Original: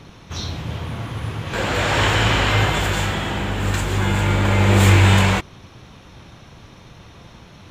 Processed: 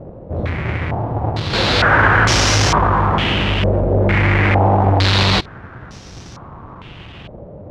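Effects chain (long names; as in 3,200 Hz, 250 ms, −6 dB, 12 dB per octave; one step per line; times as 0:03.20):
each half-wave held at its own peak
harmonic generator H 5 −11 dB, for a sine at −2.5 dBFS
low-pass on a step sequencer 2.2 Hz 570–5,700 Hz
level −6.5 dB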